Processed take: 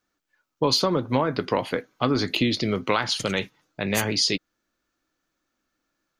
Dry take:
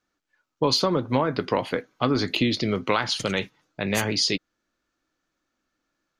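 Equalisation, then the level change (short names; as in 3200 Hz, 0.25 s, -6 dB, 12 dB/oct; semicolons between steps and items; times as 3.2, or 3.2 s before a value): high shelf 12000 Hz +9 dB; 0.0 dB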